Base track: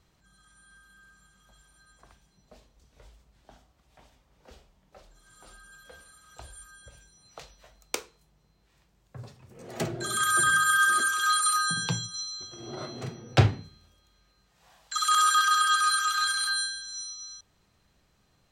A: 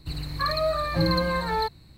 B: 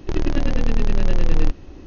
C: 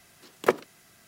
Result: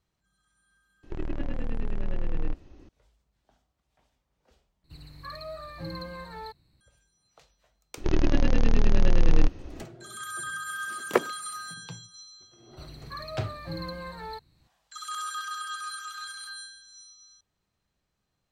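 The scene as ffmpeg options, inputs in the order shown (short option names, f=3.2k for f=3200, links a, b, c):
-filter_complex "[2:a]asplit=2[a][b];[1:a]asplit=2[c][d];[0:a]volume=-12.5dB[e];[a]acrossover=split=3100[f][g];[g]acompressor=threshold=-55dB:ratio=4:attack=1:release=60[h];[f][h]amix=inputs=2:normalize=0[i];[e]asplit=2[j][k];[j]atrim=end=4.844[l];[c]atrim=end=1.97,asetpts=PTS-STARTPTS,volume=-14.5dB[m];[k]atrim=start=6.806[n];[i]atrim=end=1.86,asetpts=PTS-STARTPTS,volume=-11.5dB,afade=t=in:d=0.004:c=hsin,afade=t=out:st=1.856:d=0.004:c=hsin,adelay=1030[o];[b]atrim=end=1.86,asetpts=PTS-STARTPTS,volume=-2dB,afade=t=in:d=0.004:c=hsin,afade=t=out:st=1.856:d=0.004:c=hsin,adelay=7970[p];[3:a]atrim=end=1.07,asetpts=PTS-STARTPTS,volume=-1dB,afade=t=in:d=0.004:c=hsin,afade=t=out:st=1.066:d=0.004:c=hsin,adelay=10670[q];[d]atrim=end=1.97,asetpts=PTS-STARTPTS,volume=-13dB,afade=t=in:d=0.004:c=hsin,afade=t=out:st=1.966:d=0.004:c=hsin,adelay=12710[r];[l][m]acrossfade=d=0.004:c1=hsin:c2=hsin[s];[s][n]acrossfade=d=0.004:c1=hsin:c2=hsin[t];[t][o][p][q][r]amix=inputs=5:normalize=0"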